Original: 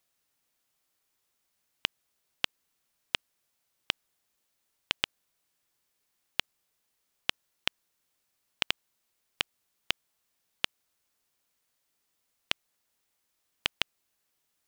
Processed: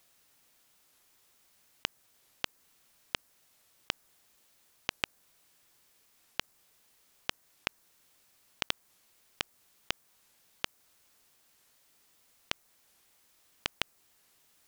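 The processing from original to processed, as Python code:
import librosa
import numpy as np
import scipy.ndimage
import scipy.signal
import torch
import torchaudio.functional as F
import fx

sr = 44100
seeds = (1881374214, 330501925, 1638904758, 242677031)

y = fx.dynamic_eq(x, sr, hz=3100.0, q=1.0, threshold_db=-47.0, ratio=4.0, max_db=-5)
y = fx.over_compress(y, sr, threshold_db=-36.0, ratio=-1.0)
y = fx.record_warp(y, sr, rpm=45.0, depth_cents=250.0)
y = y * librosa.db_to_amplitude(4.5)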